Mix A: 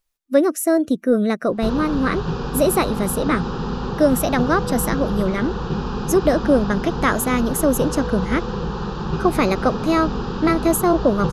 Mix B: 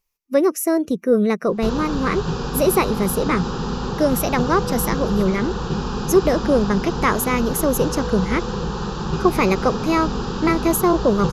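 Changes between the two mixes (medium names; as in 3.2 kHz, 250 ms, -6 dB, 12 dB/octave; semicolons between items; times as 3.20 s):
speech: add rippled EQ curve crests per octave 0.8, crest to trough 7 dB; background: remove distance through air 130 m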